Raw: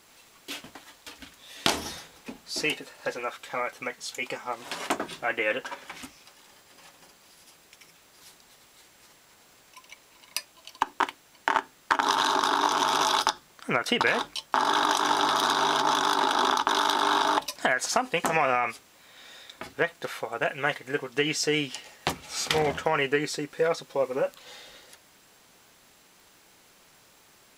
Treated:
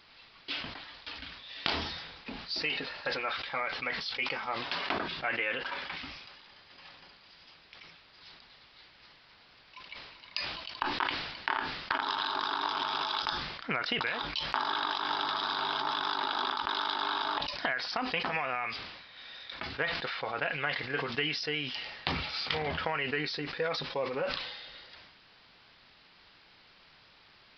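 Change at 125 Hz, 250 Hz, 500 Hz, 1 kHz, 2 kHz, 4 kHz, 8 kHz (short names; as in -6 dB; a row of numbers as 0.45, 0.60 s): -3.5 dB, -7.0 dB, -8.5 dB, -7.5 dB, -4.0 dB, -3.0 dB, under -20 dB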